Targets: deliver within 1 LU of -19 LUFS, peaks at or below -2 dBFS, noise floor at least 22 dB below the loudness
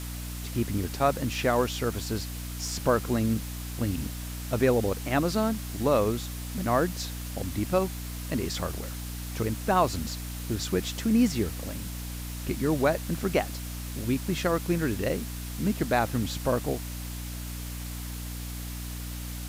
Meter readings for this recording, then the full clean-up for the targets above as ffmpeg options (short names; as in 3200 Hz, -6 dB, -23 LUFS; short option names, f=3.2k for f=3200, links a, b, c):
hum 60 Hz; harmonics up to 300 Hz; hum level -34 dBFS; noise floor -36 dBFS; noise floor target -52 dBFS; loudness -29.5 LUFS; peak -10.5 dBFS; loudness target -19.0 LUFS
-> -af "bandreject=f=60:t=h:w=4,bandreject=f=120:t=h:w=4,bandreject=f=180:t=h:w=4,bandreject=f=240:t=h:w=4,bandreject=f=300:t=h:w=4"
-af "afftdn=nr=16:nf=-36"
-af "volume=10.5dB,alimiter=limit=-2dB:level=0:latency=1"